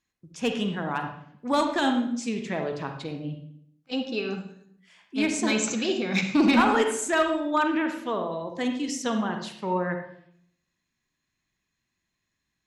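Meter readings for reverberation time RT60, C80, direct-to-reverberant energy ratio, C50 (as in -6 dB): 0.70 s, 9.5 dB, 4.5 dB, 6.0 dB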